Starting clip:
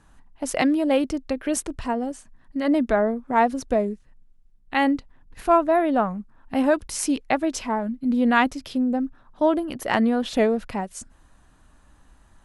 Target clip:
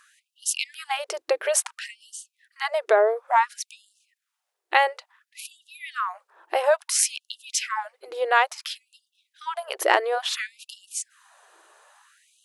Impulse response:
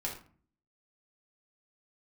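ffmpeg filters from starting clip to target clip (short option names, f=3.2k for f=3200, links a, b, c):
-af "acompressor=threshold=-21dB:ratio=5,afftfilt=real='re*gte(b*sr/1024,320*pow(2800/320,0.5+0.5*sin(2*PI*0.58*pts/sr)))':imag='im*gte(b*sr/1024,320*pow(2800/320,0.5+0.5*sin(2*PI*0.58*pts/sr)))':win_size=1024:overlap=0.75,volume=7.5dB"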